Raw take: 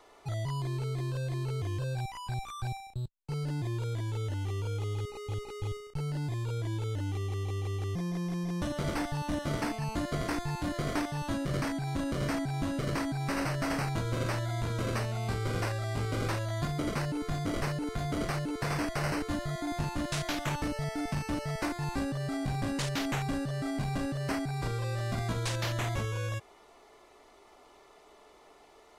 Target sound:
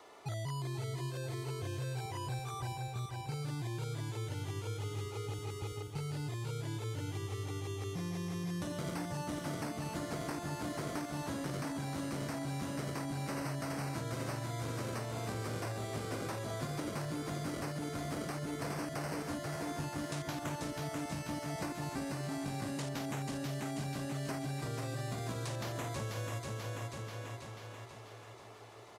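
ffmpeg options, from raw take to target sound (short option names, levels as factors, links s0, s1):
-filter_complex "[0:a]highpass=100,aecho=1:1:487|974|1461|1948|2435|2922|3409:0.501|0.271|0.146|0.0789|0.0426|0.023|0.0124,acrossover=split=1300|5600[s0][s1][s2];[s0]acompressor=threshold=0.0112:ratio=4[s3];[s1]acompressor=threshold=0.00224:ratio=4[s4];[s2]acompressor=threshold=0.00251:ratio=4[s5];[s3][s4][s5]amix=inputs=3:normalize=0,volume=1.19"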